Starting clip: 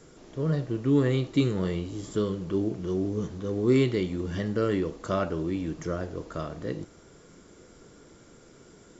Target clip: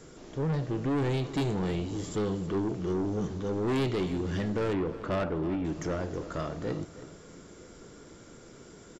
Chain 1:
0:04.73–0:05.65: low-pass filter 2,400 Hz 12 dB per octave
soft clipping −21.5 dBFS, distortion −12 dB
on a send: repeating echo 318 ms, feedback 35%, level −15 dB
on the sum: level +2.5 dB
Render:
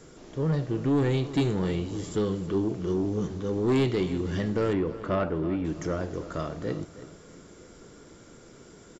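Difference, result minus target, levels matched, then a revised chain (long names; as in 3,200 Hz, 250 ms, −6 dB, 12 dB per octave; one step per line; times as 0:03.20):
soft clipping: distortion −5 dB
0:04.73–0:05.65: low-pass filter 2,400 Hz 12 dB per octave
soft clipping −28 dBFS, distortion −7 dB
on a send: repeating echo 318 ms, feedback 35%, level −15 dB
on the sum: level +2.5 dB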